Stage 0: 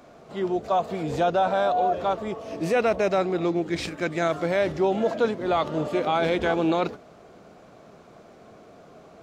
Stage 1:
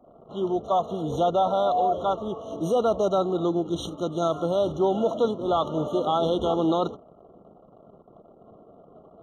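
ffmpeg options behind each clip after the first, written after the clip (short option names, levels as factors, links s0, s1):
-af "anlmdn=0.0158,afftfilt=real='re*eq(mod(floor(b*sr/1024/1400),2),0)':imag='im*eq(mod(floor(b*sr/1024/1400),2),0)':win_size=1024:overlap=0.75"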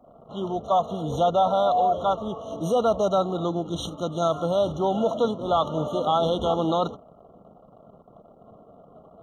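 -af "equalizer=f=360:w=2.5:g=-7.5,volume=1.33"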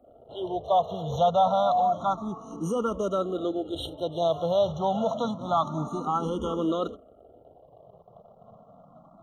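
-filter_complex "[0:a]asplit=2[s0][s1];[s1]afreqshift=0.28[s2];[s0][s2]amix=inputs=2:normalize=1"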